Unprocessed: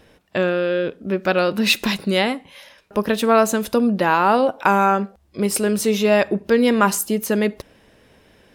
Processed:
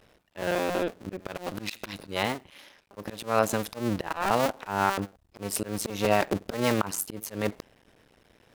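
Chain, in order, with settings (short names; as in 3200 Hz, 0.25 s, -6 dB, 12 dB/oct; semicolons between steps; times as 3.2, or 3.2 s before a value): cycle switcher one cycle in 2, muted; auto swell 0.172 s; gain -4.5 dB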